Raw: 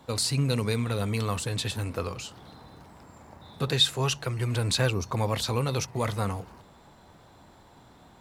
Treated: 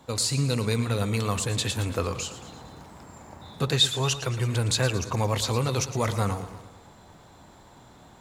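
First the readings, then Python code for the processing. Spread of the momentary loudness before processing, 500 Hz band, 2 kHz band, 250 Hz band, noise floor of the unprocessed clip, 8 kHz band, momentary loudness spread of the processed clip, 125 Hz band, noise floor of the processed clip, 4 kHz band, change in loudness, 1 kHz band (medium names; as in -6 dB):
11 LU, +1.5 dB, +1.5 dB, +1.5 dB, -55 dBFS, +4.0 dB, 21 LU, +2.0 dB, -52 dBFS, +1.5 dB, +2.0 dB, +2.0 dB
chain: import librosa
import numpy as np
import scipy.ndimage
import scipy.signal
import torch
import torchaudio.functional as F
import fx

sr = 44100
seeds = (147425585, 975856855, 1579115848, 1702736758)

p1 = fx.peak_eq(x, sr, hz=6900.0, db=6.5, octaves=0.29)
p2 = fx.rider(p1, sr, range_db=4, speed_s=0.5)
p3 = p1 + (p2 * librosa.db_to_amplitude(3.0))
p4 = fx.echo_warbled(p3, sr, ms=113, feedback_pct=54, rate_hz=2.8, cents=65, wet_db=-13)
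y = p4 * librosa.db_to_amplitude(-6.5)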